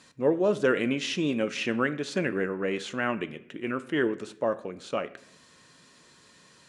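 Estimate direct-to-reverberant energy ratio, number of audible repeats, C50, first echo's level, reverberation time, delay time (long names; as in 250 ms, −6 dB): 11.5 dB, no echo audible, 16.5 dB, no echo audible, 0.65 s, no echo audible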